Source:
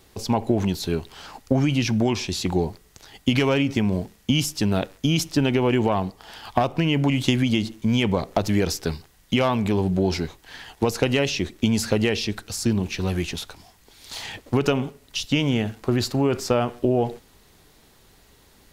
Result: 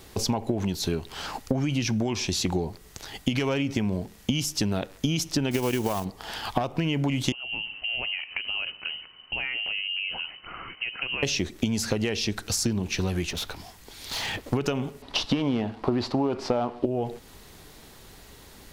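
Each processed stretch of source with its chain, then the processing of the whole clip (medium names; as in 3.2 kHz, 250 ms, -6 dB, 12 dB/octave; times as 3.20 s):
5.51–6.06 s: block-companded coder 5-bit + treble shelf 4.2 kHz +9 dB + transient shaper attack +5 dB, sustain -8 dB
7.32–11.23 s: compression 2.5:1, threshold -41 dBFS + frequency inversion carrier 3 kHz
13.30–14.44 s: dynamic bell 8 kHz, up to -7 dB, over -52 dBFS, Q 1.1 + hard clipper -32.5 dBFS
15.02–16.86 s: CVSD coder 64 kbps + FFT filter 150 Hz 0 dB, 250 Hz +7 dB, 460 Hz +5 dB, 940 Hz +11 dB, 1.5 kHz +1 dB, 4.5 kHz +1 dB, 6.7 kHz -12 dB, 13 kHz -15 dB
whole clip: dynamic bell 6 kHz, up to +4 dB, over -46 dBFS, Q 3.4; compression 5:1, threshold -30 dBFS; trim +6 dB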